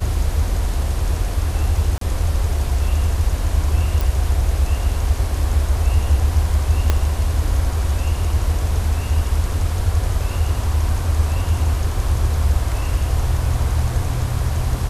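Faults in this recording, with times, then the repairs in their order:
1.98–2.01 s: dropout 33 ms
4.01 s: pop
6.90 s: pop -3 dBFS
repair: de-click; interpolate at 1.98 s, 33 ms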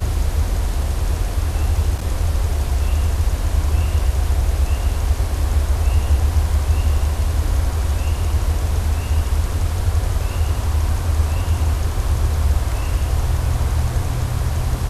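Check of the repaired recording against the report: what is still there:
6.90 s: pop

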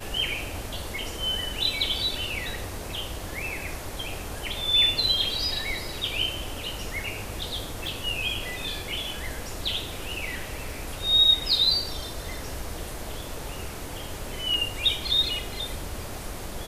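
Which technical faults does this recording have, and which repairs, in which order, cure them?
7.87 s: pop
14.54 s: dropout 2 ms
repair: de-click; interpolate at 14.54 s, 2 ms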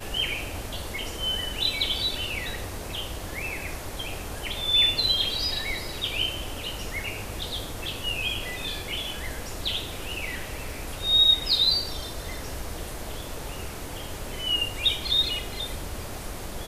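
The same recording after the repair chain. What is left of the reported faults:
7.87 s: pop

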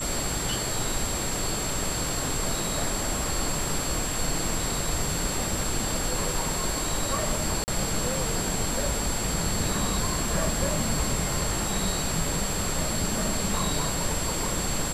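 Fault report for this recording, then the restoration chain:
whine 7.6 kHz -32 dBFS
7.64–7.68 s: dropout 39 ms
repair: band-stop 7.6 kHz, Q 30; interpolate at 7.64 s, 39 ms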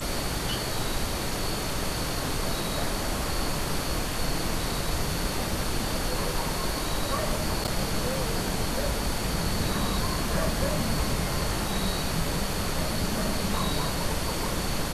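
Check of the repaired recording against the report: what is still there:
nothing left

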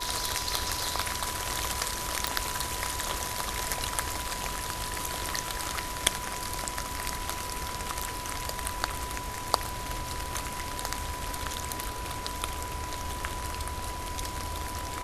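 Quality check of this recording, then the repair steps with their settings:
whine 990 Hz -38 dBFS
2.27 s: pop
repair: de-click; band-stop 990 Hz, Q 30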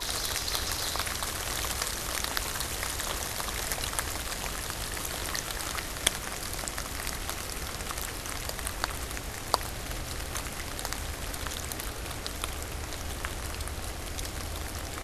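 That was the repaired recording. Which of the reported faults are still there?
nothing left

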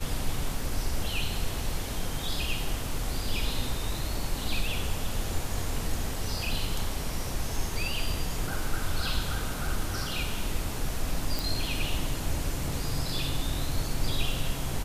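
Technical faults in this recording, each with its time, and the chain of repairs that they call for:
11.39 s: pop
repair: de-click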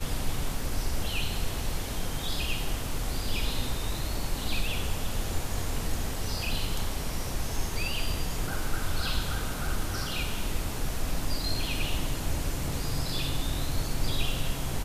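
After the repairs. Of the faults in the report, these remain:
nothing left

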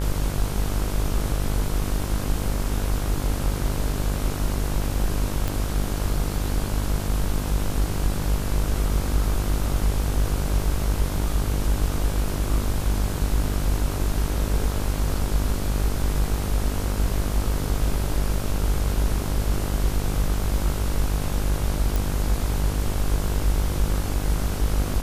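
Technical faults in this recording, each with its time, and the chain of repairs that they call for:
buzz 50 Hz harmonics 33 -27 dBFS
5.48 s: pop
21.96 s: pop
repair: de-click; de-hum 50 Hz, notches 33

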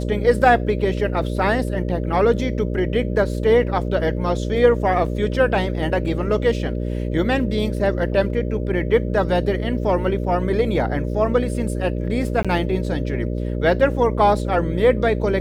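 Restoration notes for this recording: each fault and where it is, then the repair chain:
buzz 60 Hz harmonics 10 -24 dBFS
12.43–12.45 s: dropout 16 ms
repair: de-hum 60 Hz, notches 10; interpolate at 12.43 s, 16 ms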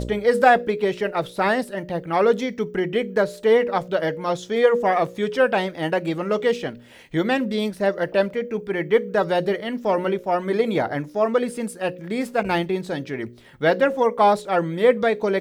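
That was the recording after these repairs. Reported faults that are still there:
nothing left

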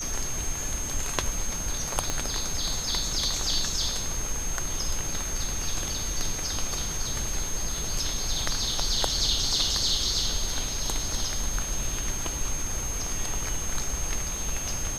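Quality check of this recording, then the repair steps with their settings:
whine 6.4 kHz -32 dBFS
2.10 s: pop -12 dBFS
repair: de-click; band-stop 6.4 kHz, Q 30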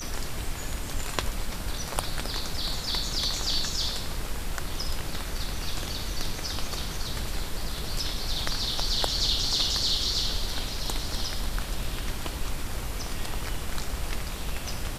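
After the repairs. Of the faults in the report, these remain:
2.10 s: pop

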